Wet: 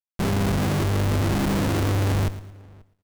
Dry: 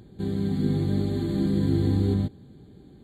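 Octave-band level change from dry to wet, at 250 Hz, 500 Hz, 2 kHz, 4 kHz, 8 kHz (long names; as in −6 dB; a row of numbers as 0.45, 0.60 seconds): −1.0 dB, +3.0 dB, +16.0 dB, +9.5 dB, can't be measured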